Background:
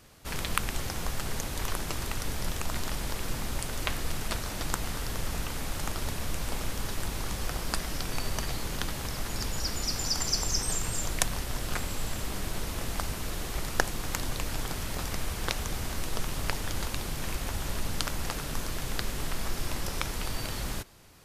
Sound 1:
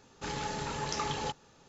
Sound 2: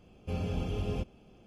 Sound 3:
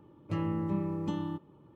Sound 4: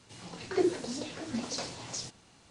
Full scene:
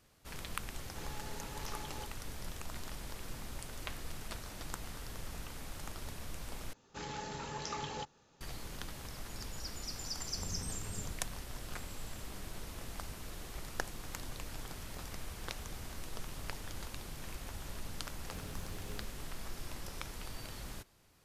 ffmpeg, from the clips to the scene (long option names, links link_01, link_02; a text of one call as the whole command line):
ffmpeg -i bed.wav -i cue0.wav -i cue1.wav -filter_complex "[1:a]asplit=2[link_01][link_02];[2:a]asplit=2[link_03][link_04];[0:a]volume=-11.5dB[link_05];[link_03]bandpass=frequency=130:width_type=q:width=0.72:csg=0[link_06];[link_04]aeval=exprs='val(0)*gte(abs(val(0)),0.0119)':channel_layout=same[link_07];[link_05]asplit=2[link_08][link_09];[link_08]atrim=end=6.734[link_10];[link_02]atrim=end=1.68,asetpts=PTS-STARTPTS,volume=-6.5dB[link_11];[link_09]atrim=start=8.406[link_12];[link_01]atrim=end=1.68,asetpts=PTS-STARTPTS,volume=-12.5dB,afade=type=in:duration=0.004:curve=hsin,afade=type=out:start_time=1.676:duration=0.004:curve=hsin,adelay=740[link_13];[link_06]atrim=end=1.46,asetpts=PTS-STARTPTS,volume=-10.5dB,afade=type=in:duration=0.004:curve=hsin,afade=type=out:start_time=1.456:duration=0.004:curve=hsin,adelay=10090[link_14];[link_07]atrim=end=1.46,asetpts=PTS-STARTPTS,volume=-15dB,afade=type=in:duration=0.004:curve=hsin,afade=type=out:start_time=1.456:duration=0.004:curve=hsin,adelay=18010[link_15];[link_10][link_11]acrossfade=duration=0.004:curve1=hsin:curve2=hsin[link_16];[link_16][link_12]acrossfade=duration=0.004:curve1=hsin:curve2=hsin[link_17];[link_17][link_13][link_14][link_15]amix=inputs=4:normalize=0" out.wav